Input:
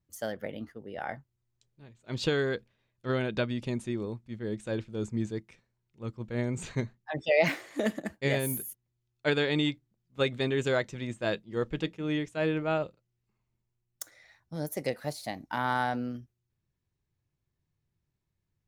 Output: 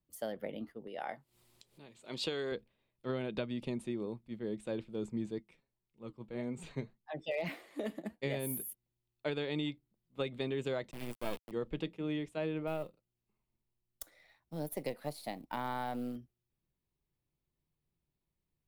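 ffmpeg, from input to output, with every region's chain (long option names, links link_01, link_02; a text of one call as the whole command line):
ffmpeg -i in.wav -filter_complex "[0:a]asettb=1/sr,asplit=3[link_01][link_02][link_03];[link_01]atrim=end=0.874[link_04];[link_02]atrim=start=0.87:end=2.52,asetpts=PTS-STARTPTS,afade=type=in:duration=0.004:curve=qsin,afade=type=out:start_time=1.646:duration=0.004:curve=qsin,lowpass=7500,aemphasis=mode=production:type=bsi,acompressor=mode=upward:threshold=-42dB:ratio=2.5:attack=3.2:release=140:knee=2.83:detection=peak[link_05];[link_03]atrim=start=2.516[link_06];[link_04][link_05]acrossfade=duration=0.004:curve1=hsin:curve2=qsin[link_07];[link_07][link_06]acrossfade=duration=0.004:curve1=qsin:curve2=hsin,asettb=1/sr,asplit=3[link_08][link_09][link_10];[link_08]atrim=end=5.384[link_11];[link_09]atrim=start=5.38:end=8.23,asetpts=PTS-STARTPTS,afade=type=in:duration=0.004:curve=qsin,afade=type=out:start_time=2.846:duration=0.004:curve=qsin,flanger=delay=4.1:depth=3.2:regen=66:speed=1.8:shape=sinusoidal,asoftclip=type=hard:threshold=-20.5dB[link_12];[link_10]atrim=start=8.226[link_13];[link_11][link_12]acrossfade=duration=0.004:curve1=hsin:curve2=qsin[link_14];[link_14][link_13]acrossfade=duration=0.004:curve1=qsin:curve2=hsin,asettb=1/sr,asplit=3[link_15][link_16][link_17];[link_15]atrim=end=10.914[link_18];[link_16]atrim=start=10.91:end=11.51,asetpts=PTS-STARTPTS,afade=type=in:duration=0.004:curve=qsin,afade=type=out:start_time=0.596:duration=0.004:curve=qsin,acrusher=bits=4:dc=4:mix=0:aa=0.000001,bandreject=frequency=3900:width=13[link_19];[link_17]atrim=start=11.506[link_20];[link_18][link_19]acrossfade=duration=0.004:curve1=hsin:curve2=qsin[link_21];[link_21][link_20]acrossfade=duration=0.004:curve1=qsin:curve2=hsin,asettb=1/sr,asplit=3[link_22][link_23][link_24];[link_22]atrim=end=12.674[link_25];[link_23]atrim=start=12.67:end=16.16,asetpts=PTS-STARTPTS,afade=type=in:duration=0.004:curve=qsin,afade=type=out:start_time=3.486:duration=0.004:curve=qsin,aeval=exprs='if(lt(val(0),0),0.708*val(0),val(0))':channel_layout=same,acrusher=bits=6:mode=log:mix=0:aa=0.000001[link_26];[link_24]atrim=start=16.156[link_27];[link_25][link_26]acrossfade=duration=0.004:curve1=hsin:curve2=qsin[link_28];[link_28][link_27]acrossfade=duration=0.004:curve1=qsin:curve2=hsin,equalizer=frequency=100:width_type=o:width=0.67:gain=-12,equalizer=frequency=1600:width_type=o:width=0.67:gain=-7,equalizer=frequency=6300:width_type=o:width=0.67:gain=-11,acrossover=split=120[link_29][link_30];[link_30]acompressor=threshold=-32dB:ratio=4[link_31];[link_29][link_31]amix=inputs=2:normalize=0,volume=-1.5dB" out.wav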